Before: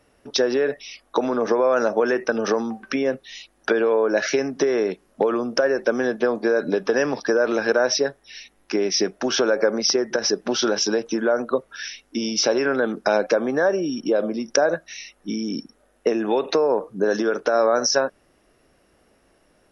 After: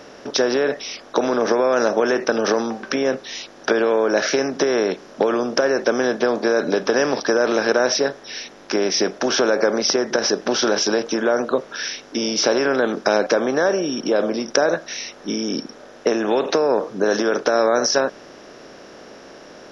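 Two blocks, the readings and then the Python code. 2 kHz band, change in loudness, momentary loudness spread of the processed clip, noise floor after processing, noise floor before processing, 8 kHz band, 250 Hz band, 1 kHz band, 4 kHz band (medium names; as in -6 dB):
+2.5 dB, +2.0 dB, 8 LU, -43 dBFS, -62 dBFS, no reading, +2.0 dB, +3.0 dB, +2.5 dB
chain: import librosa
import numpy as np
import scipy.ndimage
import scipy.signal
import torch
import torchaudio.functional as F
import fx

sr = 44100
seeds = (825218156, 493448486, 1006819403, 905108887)

y = fx.bin_compress(x, sr, power=0.6)
y = F.gain(torch.from_numpy(y), -1.5).numpy()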